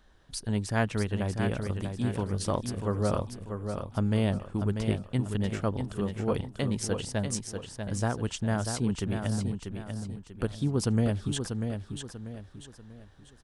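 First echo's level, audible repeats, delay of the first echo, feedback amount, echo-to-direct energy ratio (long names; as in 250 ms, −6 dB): −6.5 dB, 4, 641 ms, 37%, −6.0 dB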